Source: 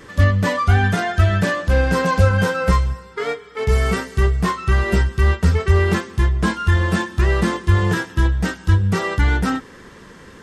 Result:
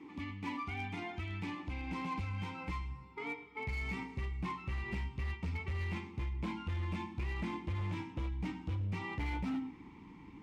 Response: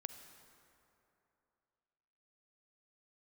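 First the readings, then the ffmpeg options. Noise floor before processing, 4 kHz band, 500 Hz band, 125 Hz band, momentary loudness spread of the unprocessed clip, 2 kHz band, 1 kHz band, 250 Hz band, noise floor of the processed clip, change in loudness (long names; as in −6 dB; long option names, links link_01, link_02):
−42 dBFS, −20.5 dB, −27.5 dB, −22.0 dB, 5 LU, −21.0 dB, −20.0 dB, −18.0 dB, −54 dBFS, −21.5 dB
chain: -filter_complex "[1:a]atrim=start_sample=2205,atrim=end_sample=6174,asetrate=48510,aresample=44100[link_01];[0:a][link_01]afir=irnorm=-1:irlink=0,acrossover=split=1500[link_02][link_03];[link_02]acompressor=threshold=-28dB:ratio=6[link_04];[link_04][link_03]amix=inputs=2:normalize=0,asubboost=boost=9.5:cutoff=110,asplit=3[link_05][link_06][link_07];[link_05]bandpass=frequency=300:width_type=q:width=8,volume=0dB[link_08];[link_06]bandpass=frequency=870:width_type=q:width=8,volume=-6dB[link_09];[link_07]bandpass=frequency=2240:width_type=q:width=8,volume=-9dB[link_10];[link_08][link_09][link_10]amix=inputs=3:normalize=0,asoftclip=type=hard:threshold=-39dB,volume=6.5dB"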